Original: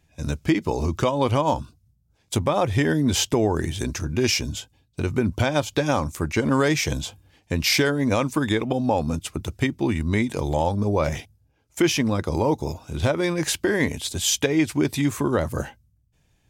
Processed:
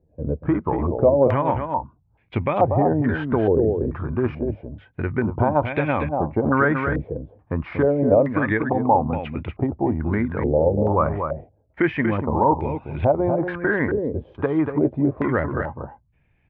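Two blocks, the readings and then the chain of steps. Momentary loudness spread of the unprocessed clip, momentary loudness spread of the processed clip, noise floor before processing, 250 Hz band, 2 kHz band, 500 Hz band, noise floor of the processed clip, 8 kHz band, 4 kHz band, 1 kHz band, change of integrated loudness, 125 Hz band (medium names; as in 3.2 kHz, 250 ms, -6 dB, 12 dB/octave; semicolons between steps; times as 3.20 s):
9 LU, 10 LU, -66 dBFS, +1.0 dB, +0.5 dB, +4.0 dB, -64 dBFS, under -40 dB, under -20 dB, +4.5 dB, +1.5 dB, +1.0 dB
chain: distance through air 480 m; delay 238 ms -6.5 dB; step-sequenced low-pass 2.3 Hz 490–2300 Hz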